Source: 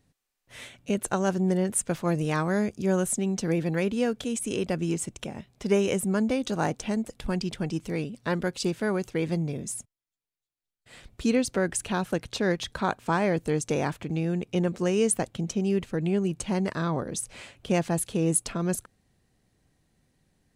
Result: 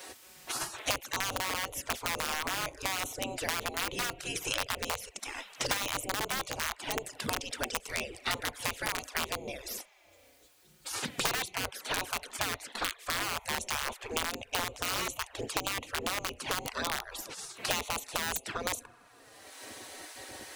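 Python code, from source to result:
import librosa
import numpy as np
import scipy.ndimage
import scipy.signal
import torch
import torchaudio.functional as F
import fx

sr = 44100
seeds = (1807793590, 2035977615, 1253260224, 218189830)

p1 = fx.low_shelf(x, sr, hz=170.0, db=7.5)
p2 = fx.rev_spring(p1, sr, rt60_s=1.3, pass_ms=(33,), chirp_ms=45, drr_db=18.5)
p3 = fx.dynamic_eq(p2, sr, hz=290.0, q=3.2, threshold_db=-42.0, ratio=4.0, max_db=6)
p4 = fx.env_flanger(p3, sr, rest_ms=5.5, full_db=-20.0)
p5 = (np.mod(10.0 ** (16.0 / 20.0) * p4 + 1.0, 2.0) - 1.0) / 10.0 ** (16.0 / 20.0)
p6 = p4 + (p5 * librosa.db_to_amplitude(-6.0))
p7 = fx.spec_gate(p6, sr, threshold_db=-20, keep='weak')
y = fx.band_squash(p7, sr, depth_pct=100)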